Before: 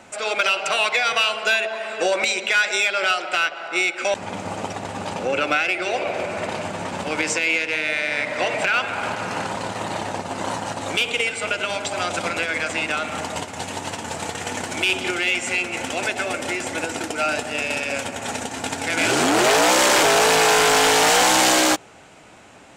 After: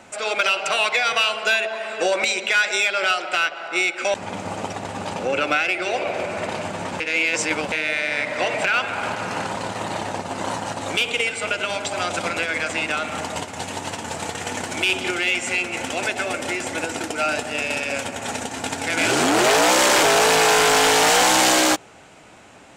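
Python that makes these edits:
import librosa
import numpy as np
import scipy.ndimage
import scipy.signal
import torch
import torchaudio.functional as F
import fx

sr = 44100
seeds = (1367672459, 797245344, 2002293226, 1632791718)

y = fx.edit(x, sr, fx.reverse_span(start_s=7.0, length_s=0.72), tone=tone)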